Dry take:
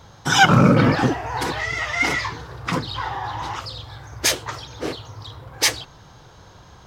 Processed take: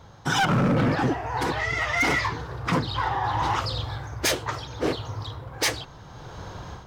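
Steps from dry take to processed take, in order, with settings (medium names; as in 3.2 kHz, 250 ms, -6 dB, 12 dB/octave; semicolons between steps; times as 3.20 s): treble shelf 2.5 kHz -6.5 dB; in parallel at +1 dB: peak limiter -12 dBFS, peak gain reduction 8.5 dB; on the sum: level rider gain up to 11 dB; overload inside the chain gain 9.5 dB; trim -8 dB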